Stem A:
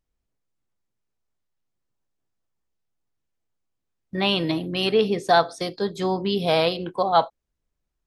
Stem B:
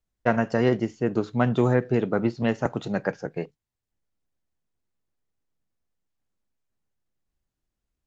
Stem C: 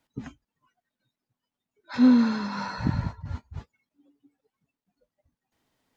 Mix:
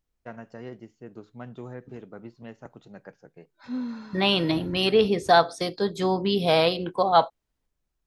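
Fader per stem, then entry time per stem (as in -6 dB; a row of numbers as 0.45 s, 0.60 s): 0.0 dB, -18.5 dB, -14.0 dB; 0.00 s, 0.00 s, 1.70 s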